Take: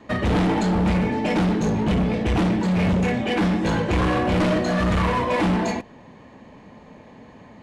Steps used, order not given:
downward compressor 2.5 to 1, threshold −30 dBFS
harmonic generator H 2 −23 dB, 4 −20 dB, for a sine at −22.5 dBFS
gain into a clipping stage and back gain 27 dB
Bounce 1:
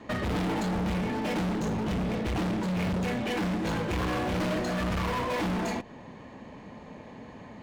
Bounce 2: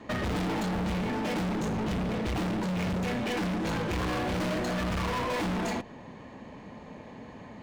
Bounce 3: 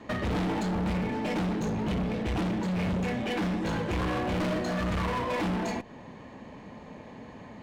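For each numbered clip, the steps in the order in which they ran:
harmonic generator, then downward compressor, then gain into a clipping stage and back
harmonic generator, then gain into a clipping stage and back, then downward compressor
downward compressor, then harmonic generator, then gain into a clipping stage and back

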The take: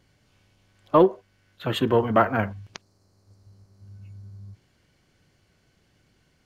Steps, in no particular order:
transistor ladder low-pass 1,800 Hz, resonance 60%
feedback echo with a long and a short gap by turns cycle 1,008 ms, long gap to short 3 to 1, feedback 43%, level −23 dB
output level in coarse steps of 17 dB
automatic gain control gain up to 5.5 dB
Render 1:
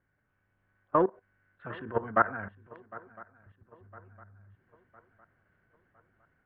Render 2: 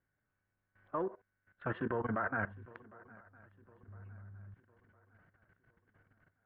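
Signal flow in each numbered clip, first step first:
output level in coarse steps, then feedback echo with a long and a short gap by turns, then automatic gain control, then transistor ladder low-pass
automatic gain control, then transistor ladder low-pass, then output level in coarse steps, then feedback echo with a long and a short gap by turns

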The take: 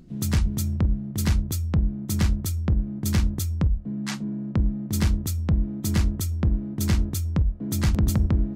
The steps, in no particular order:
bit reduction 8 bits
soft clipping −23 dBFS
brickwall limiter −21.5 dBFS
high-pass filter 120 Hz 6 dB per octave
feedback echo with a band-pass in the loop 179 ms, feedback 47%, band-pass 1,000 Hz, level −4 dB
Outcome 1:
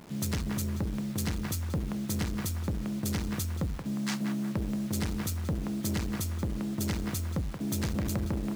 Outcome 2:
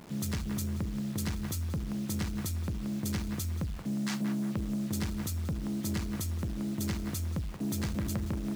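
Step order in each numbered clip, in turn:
feedback echo with a band-pass in the loop, then soft clipping, then bit reduction, then high-pass filter, then brickwall limiter
brickwall limiter, then feedback echo with a band-pass in the loop, then bit reduction, then soft clipping, then high-pass filter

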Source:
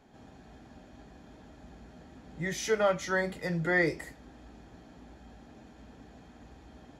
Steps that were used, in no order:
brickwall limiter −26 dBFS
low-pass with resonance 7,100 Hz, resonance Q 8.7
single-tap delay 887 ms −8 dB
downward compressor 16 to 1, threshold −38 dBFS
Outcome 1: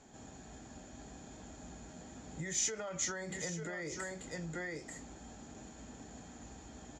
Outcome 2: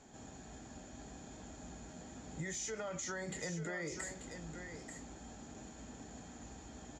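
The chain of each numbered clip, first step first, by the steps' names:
single-tap delay, then brickwall limiter, then downward compressor, then low-pass with resonance
low-pass with resonance, then brickwall limiter, then downward compressor, then single-tap delay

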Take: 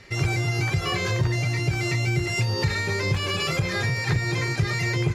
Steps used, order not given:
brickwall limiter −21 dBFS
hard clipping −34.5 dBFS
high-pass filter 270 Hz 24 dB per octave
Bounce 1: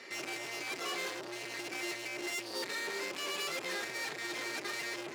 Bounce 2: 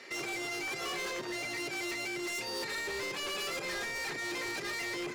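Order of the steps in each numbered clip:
brickwall limiter, then hard clipping, then high-pass filter
brickwall limiter, then high-pass filter, then hard clipping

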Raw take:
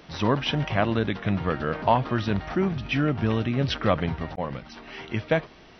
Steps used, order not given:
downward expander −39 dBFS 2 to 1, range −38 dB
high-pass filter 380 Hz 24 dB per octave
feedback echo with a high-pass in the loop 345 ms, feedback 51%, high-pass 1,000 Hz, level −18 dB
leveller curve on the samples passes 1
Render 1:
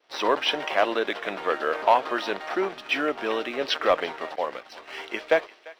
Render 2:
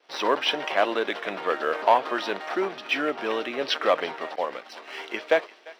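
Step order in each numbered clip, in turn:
high-pass filter, then leveller curve on the samples, then downward expander, then feedback echo with a high-pass in the loop
leveller curve on the samples, then feedback echo with a high-pass in the loop, then downward expander, then high-pass filter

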